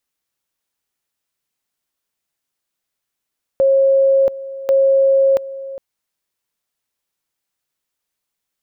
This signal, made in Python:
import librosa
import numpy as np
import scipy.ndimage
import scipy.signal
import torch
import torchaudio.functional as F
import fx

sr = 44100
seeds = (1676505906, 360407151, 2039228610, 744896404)

y = fx.two_level_tone(sr, hz=542.0, level_db=-9.5, drop_db=16.5, high_s=0.68, low_s=0.41, rounds=2)